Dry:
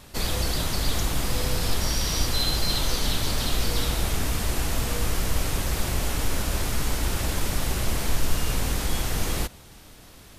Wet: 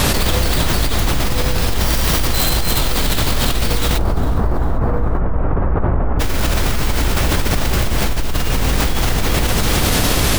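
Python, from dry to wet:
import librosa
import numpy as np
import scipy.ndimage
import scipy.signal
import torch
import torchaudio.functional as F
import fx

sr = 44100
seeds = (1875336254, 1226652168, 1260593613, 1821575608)

y = fx.tracing_dist(x, sr, depth_ms=0.19)
y = fx.lowpass(y, sr, hz=1300.0, slope=24, at=(3.97, 6.19), fade=0.02)
y = fx.echo_feedback(y, sr, ms=402, feedback_pct=40, wet_db=-18.5)
y = fx.env_flatten(y, sr, amount_pct=100)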